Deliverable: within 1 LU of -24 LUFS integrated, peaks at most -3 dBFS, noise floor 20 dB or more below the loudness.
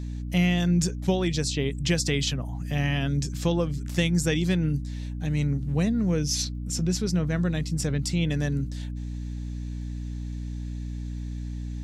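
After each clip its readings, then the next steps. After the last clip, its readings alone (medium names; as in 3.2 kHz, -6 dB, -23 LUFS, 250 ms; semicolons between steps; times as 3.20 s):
tick rate 24 per s; hum 60 Hz; highest harmonic 300 Hz; hum level -30 dBFS; loudness -27.0 LUFS; peak level -11.0 dBFS; loudness target -24.0 LUFS
-> de-click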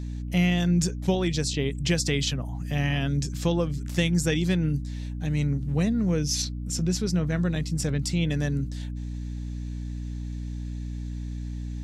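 tick rate 0.084 per s; hum 60 Hz; highest harmonic 300 Hz; hum level -30 dBFS
-> de-hum 60 Hz, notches 5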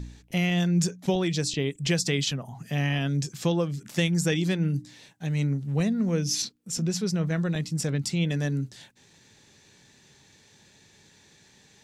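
hum not found; loudness -27.0 LUFS; peak level -13.0 dBFS; loudness target -24.0 LUFS
-> trim +3 dB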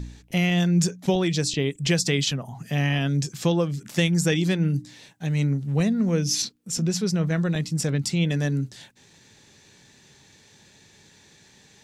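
loudness -24.0 LUFS; peak level -10.0 dBFS; noise floor -55 dBFS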